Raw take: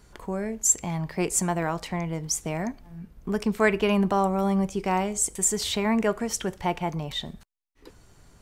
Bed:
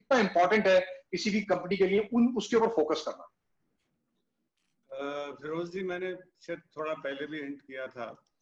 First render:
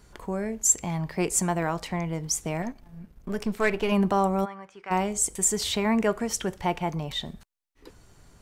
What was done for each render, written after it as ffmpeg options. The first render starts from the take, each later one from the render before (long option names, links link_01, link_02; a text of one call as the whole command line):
ffmpeg -i in.wav -filter_complex "[0:a]asettb=1/sr,asplit=3[link_01][link_02][link_03];[link_01]atrim=end=2.624[link_04];[link_02]atrim=start=2.62:end=3.92,asetpts=PTS-STARTPTS,afade=type=in:duration=0.004:curve=qsin,afade=type=out:start_time=1.296:duration=0.004:curve=qsin,aeval=exprs='if(lt(val(0),0),0.447*val(0),val(0))':channel_layout=same[link_05];[link_03]atrim=start=3.916[link_06];[link_04][link_05]acrossfade=duration=0.004:curve1=hsin:curve2=qsin[link_07];[link_07][link_06]acrossfade=duration=0.004:curve1=qsin:curve2=hsin,asplit=3[link_08][link_09][link_10];[link_08]afade=type=out:start_time=4.44:duration=0.02[link_11];[link_09]bandpass=frequency=1500:width_type=q:width=2,afade=type=in:start_time=4.44:duration=0.02,afade=type=out:start_time=4.9:duration=0.02[link_12];[link_10]afade=type=in:start_time=4.9:duration=0.02[link_13];[link_11][link_12][link_13]amix=inputs=3:normalize=0" out.wav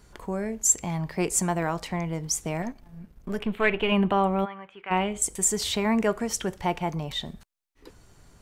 ffmpeg -i in.wav -filter_complex "[0:a]asettb=1/sr,asplit=3[link_01][link_02][link_03];[link_01]atrim=end=3.394[link_04];[link_02]atrim=start=3.39:end=5.22,asetpts=PTS-STARTPTS,afade=type=in:duration=0.004:curve=qsin,afade=type=out:start_time=1.826:duration=0.004:curve=qsin,highshelf=frequency=4100:width_type=q:width=3:gain=-10[link_05];[link_03]atrim=start=5.216[link_06];[link_04][link_05]acrossfade=duration=0.004:curve1=hsin:curve2=qsin[link_07];[link_07][link_06]acrossfade=duration=0.004:curve1=qsin:curve2=hsin" out.wav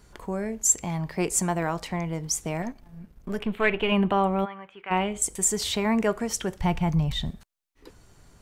ffmpeg -i in.wav -filter_complex "[0:a]asplit=3[link_01][link_02][link_03];[link_01]afade=type=out:start_time=6.6:duration=0.02[link_04];[link_02]asubboost=boost=6:cutoff=160,afade=type=in:start_time=6.6:duration=0.02,afade=type=out:start_time=7.29:duration=0.02[link_05];[link_03]afade=type=in:start_time=7.29:duration=0.02[link_06];[link_04][link_05][link_06]amix=inputs=3:normalize=0" out.wav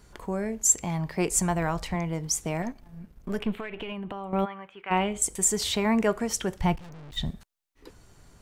ffmpeg -i in.wav -filter_complex "[0:a]asplit=3[link_01][link_02][link_03];[link_01]afade=type=out:start_time=1.31:duration=0.02[link_04];[link_02]asubboost=boost=5.5:cutoff=130,afade=type=in:start_time=1.31:duration=0.02,afade=type=out:start_time=1.94:duration=0.02[link_05];[link_03]afade=type=in:start_time=1.94:duration=0.02[link_06];[link_04][link_05][link_06]amix=inputs=3:normalize=0,asettb=1/sr,asplit=3[link_07][link_08][link_09];[link_07]atrim=end=3.544[link_10];[link_08]atrim=start=3.54:end=4.33,asetpts=PTS-STARTPTS,afade=type=in:duration=0.004:curve=qsin,afade=type=out:start_time=0.786:duration=0.004:curve=qsin,acompressor=threshold=-31dB:ratio=16:attack=3.2:release=140:knee=1:detection=peak[link_11];[link_09]atrim=start=4.326[link_12];[link_10][link_11]acrossfade=duration=0.004:curve1=hsin:curve2=qsin[link_13];[link_13][link_12]acrossfade=duration=0.004:curve1=qsin:curve2=hsin,asplit=3[link_14][link_15][link_16];[link_14]afade=type=out:start_time=6.75:duration=0.02[link_17];[link_15]aeval=exprs='(tanh(158*val(0)+0.6)-tanh(0.6))/158':channel_layout=same,afade=type=in:start_time=6.75:duration=0.02,afade=type=out:start_time=7.16:duration=0.02[link_18];[link_16]afade=type=in:start_time=7.16:duration=0.02[link_19];[link_17][link_18][link_19]amix=inputs=3:normalize=0" out.wav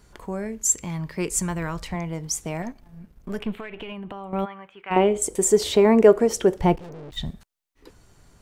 ffmpeg -i in.wav -filter_complex "[0:a]asettb=1/sr,asplit=3[link_01][link_02][link_03];[link_01]atrim=end=0.474[link_04];[link_02]atrim=start=0.47:end=1.87,asetpts=PTS-STARTPTS,afade=type=in:duration=0.004:curve=qsin,afade=type=out:start_time=1.396:duration=0.004:curve=qsin,equalizer=frequency=740:width=4:gain=-12[link_05];[link_03]atrim=start=1.866[link_06];[link_04][link_05]acrossfade=duration=0.004:curve1=hsin:curve2=qsin[link_07];[link_07][link_06]acrossfade=duration=0.004:curve1=qsin:curve2=hsin,asettb=1/sr,asplit=3[link_08][link_09][link_10];[link_08]atrim=end=4.964[link_11];[link_09]atrim=start=4.96:end=7.1,asetpts=PTS-STARTPTS,afade=type=in:duration=0.004:curve=qsin,afade=type=out:start_time=2.136:duration=0.004:curve=qsin,equalizer=frequency=420:width_type=o:width=1.4:gain=14.5[link_12];[link_10]atrim=start=7.096[link_13];[link_11][link_12]acrossfade=duration=0.004:curve1=hsin:curve2=qsin[link_14];[link_14][link_13]acrossfade=duration=0.004:curve1=qsin:curve2=hsin" out.wav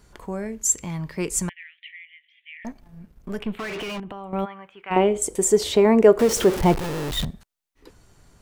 ffmpeg -i in.wav -filter_complex "[0:a]asettb=1/sr,asplit=3[link_01][link_02][link_03];[link_01]atrim=end=1.494[link_04];[link_02]atrim=start=1.49:end=2.65,asetpts=PTS-STARTPTS,afade=type=in:duration=0.004:curve=qsin,afade=type=out:start_time=1.156:duration=0.004:curve=qsin,asuperpass=centerf=2500:order=12:qfactor=1.6[link_05];[link_03]atrim=start=2.646[link_06];[link_04][link_05]acrossfade=duration=0.004:curve1=hsin:curve2=qsin[link_07];[link_07][link_06]acrossfade=duration=0.004:curve1=qsin:curve2=hsin,asettb=1/sr,asplit=3[link_08][link_09][link_10];[link_08]atrim=end=3.594[link_11];[link_09]atrim=start=3.59:end=4,asetpts=PTS-STARTPTS,afade=type=in:duration=0.004:curve=qsin,afade=type=out:start_time=0.406:duration=0.004:curve=qsin,asplit=2[link_12][link_13];[link_13]highpass=frequency=720:poles=1,volume=37dB,asoftclip=type=tanh:threshold=-24dB[link_14];[link_12][link_14]amix=inputs=2:normalize=0,lowpass=frequency=2500:poles=1,volume=-6dB[link_15];[link_10]atrim=start=3.996[link_16];[link_11][link_15]acrossfade=duration=0.004:curve1=hsin:curve2=qsin[link_17];[link_17][link_16]acrossfade=duration=0.004:curve1=qsin:curve2=hsin,asettb=1/sr,asplit=3[link_18][link_19][link_20];[link_18]atrim=end=6.194[link_21];[link_19]atrim=start=6.19:end=7.25,asetpts=PTS-STARTPTS,afade=type=in:duration=0.004:curve=qsin,afade=type=out:start_time=1.056:duration=0.004:curve=qsin,aeval=exprs='val(0)+0.5*0.0668*sgn(val(0))':channel_layout=same[link_22];[link_20]atrim=start=7.246[link_23];[link_21][link_22]acrossfade=duration=0.004:curve1=hsin:curve2=qsin[link_24];[link_24][link_23]acrossfade=duration=0.004:curve1=qsin:curve2=hsin" out.wav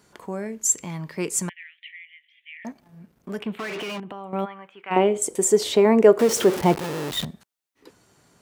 ffmpeg -i in.wav -af "highpass=160" out.wav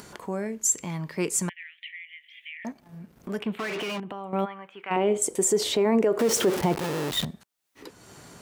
ffmpeg -i in.wav -af "alimiter=limit=-14dB:level=0:latency=1:release=40,acompressor=mode=upward:threshold=-36dB:ratio=2.5" out.wav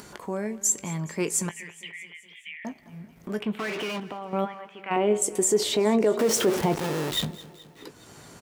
ffmpeg -i in.wav -filter_complex "[0:a]asplit=2[link_01][link_02];[link_02]adelay=19,volume=-12.5dB[link_03];[link_01][link_03]amix=inputs=2:normalize=0,aecho=1:1:211|422|633|844|1055:0.112|0.0662|0.0391|0.023|0.0136" out.wav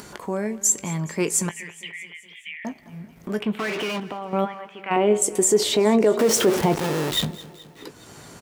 ffmpeg -i in.wav -af "volume=4dB" out.wav